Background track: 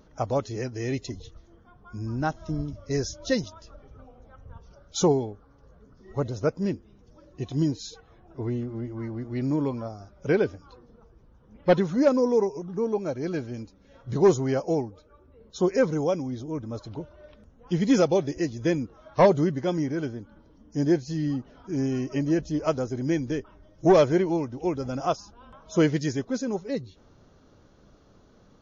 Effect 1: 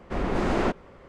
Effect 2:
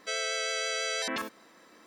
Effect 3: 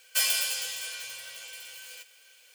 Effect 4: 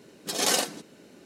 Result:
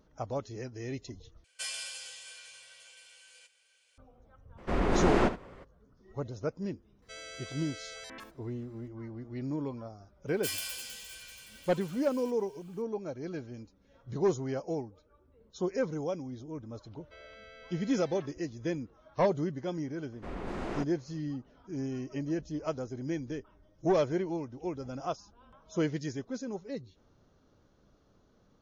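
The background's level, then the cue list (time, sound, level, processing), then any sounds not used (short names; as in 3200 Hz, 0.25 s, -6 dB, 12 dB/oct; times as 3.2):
background track -9 dB
1.44 replace with 3 -11 dB + downsampling 22050 Hz
4.57 add 1 -1 dB, fades 0.02 s + echo 72 ms -13 dB
7.02 add 2 -14 dB
10.28 add 3 -10.5 dB
17.04 add 2 -17 dB + air absorption 320 m
20.12 add 1 -12 dB
not used: 4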